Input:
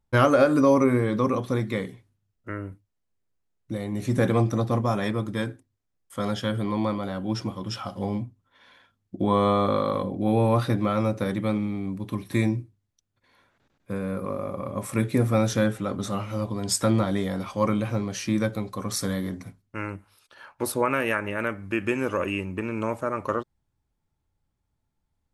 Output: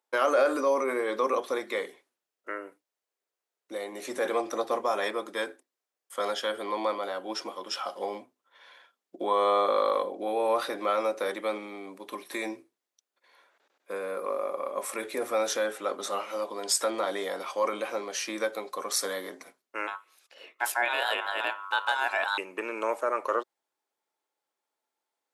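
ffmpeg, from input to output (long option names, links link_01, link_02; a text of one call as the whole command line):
ffmpeg -i in.wav -filter_complex "[0:a]asettb=1/sr,asplit=3[link_01][link_02][link_03];[link_01]atrim=end=19.874[link_04];[link_02]atrim=start=19.87:end=22.38,asetpts=PTS-STARTPTS,afade=type=in:duration=0.004:curve=qsin,afade=type=out:start_time=2.506:duration=0.004:curve=qsin,aeval=exprs='val(0)*sin(2*PI*1200*n/s)':channel_layout=same[link_05];[link_03]atrim=start=22.376[link_06];[link_04][link_05]acrossfade=duration=0.004:curve1=hsin:curve2=qsin[link_07];[link_07][link_06]acrossfade=duration=0.004:curve1=qsin:curve2=hsin,alimiter=limit=-15.5dB:level=0:latency=1:release=16,highpass=frequency=410:width=0.5412,highpass=frequency=410:width=1.3066,volume=1.5dB" out.wav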